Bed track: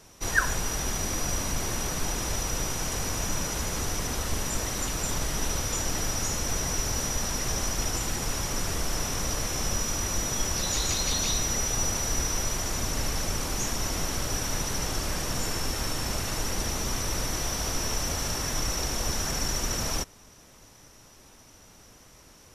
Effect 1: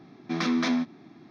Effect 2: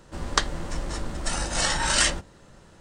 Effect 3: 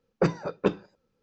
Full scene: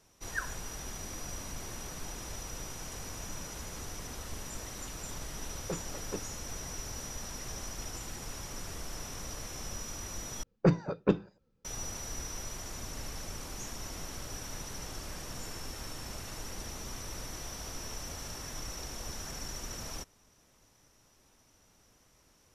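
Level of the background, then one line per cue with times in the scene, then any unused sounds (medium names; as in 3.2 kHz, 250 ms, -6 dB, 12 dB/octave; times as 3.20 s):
bed track -12 dB
5.48 s: add 3 -15 dB
10.43 s: replace with 3 -5.5 dB + bass shelf 220 Hz +11.5 dB
not used: 1, 2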